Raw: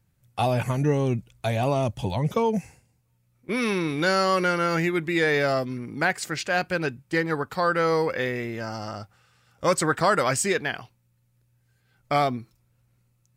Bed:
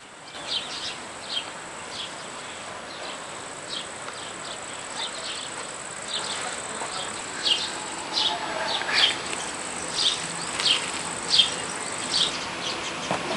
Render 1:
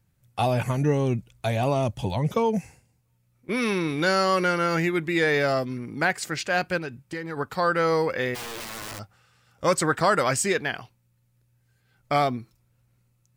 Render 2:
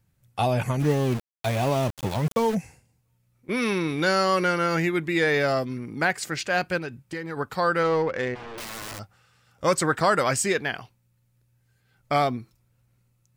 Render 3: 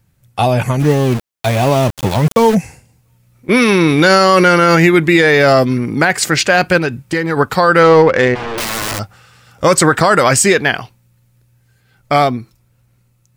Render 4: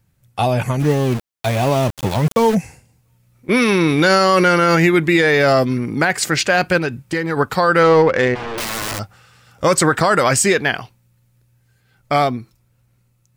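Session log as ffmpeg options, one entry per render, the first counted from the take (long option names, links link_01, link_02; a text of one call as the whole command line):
ffmpeg -i in.wav -filter_complex "[0:a]asplit=3[link_01][link_02][link_03];[link_01]afade=type=out:start_time=6.78:duration=0.02[link_04];[link_02]acompressor=threshold=-30dB:ratio=4:attack=3.2:release=140:knee=1:detection=peak,afade=type=in:start_time=6.78:duration=0.02,afade=type=out:start_time=7.36:duration=0.02[link_05];[link_03]afade=type=in:start_time=7.36:duration=0.02[link_06];[link_04][link_05][link_06]amix=inputs=3:normalize=0,asplit=3[link_07][link_08][link_09];[link_07]afade=type=out:start_time=8.34:duration=0.02[link_10];[link_08]aeval=exprs='(mod(33.5*val(0)+1,2)-1)/33.5':channel_layout=same,afade=type=in:start_time=8.34:duration=0.02,afade=type=out:start_time=8.98:duration=0.02[link_11];[link_09]afade=type=in:start_time=8.98:duration=0.02[link_12];[link_10][link_11][link_12]amix=inputs=3:normalize=0" out.wav
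ffmpeg -i in.wav -filter_complex "[0:a]asplit=3[link_01][link_02][link_03];[link_01]afade=type=out:start_time=0.79:duration=0.02[link_04];[link_02]aeval=exprs='val(0)*gte(abs(val(0)),0.0335)':channel_layout=same,afade=type=in:start_time=0.79:duration=0.02,afade=type=out:start_time=2.54:duration=0.02[link_05];[link_03]afade=type=in:start_time=2.54:duration=0.02[link_06];[link_04][link_05][link_06]amix=inputs=3:normalize=0,asettb=1/sr,asplit=3[link_07][link_08][link_09];[link_07]atrim=end=7.834[link_10];[link_08]atrim=start=7.83:end=8.58,asetpts=PTS-STARTPTS,afade=type=in:duration=0.004:curve=qsin,afade=type=out:start_time=0.746:duration=0.004:curve=qsin,adynamicsmooth=sensitivity=1.5:basefreq=1500[link_11];[link_09]atrim=start=8.576[link_12];[link_10][link_11]acrossfade=duration=0.004:curve1=hsin:curve2=qsin[link_13];[link_13][link_12]acrossfade=duration=0.004:curve1=qsin:curve2=hsin" out.wav
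ffmpeg -i in.wav -af "dynaudnorm=framelen=270:gausssize=21:maxgain=8.5dB,alimiter=level_in=10dB:limit=-1dB:release=50:level=0:latency=1" out.wav
ffmpeg -i in.wav -af "volume=-4dB" out.wav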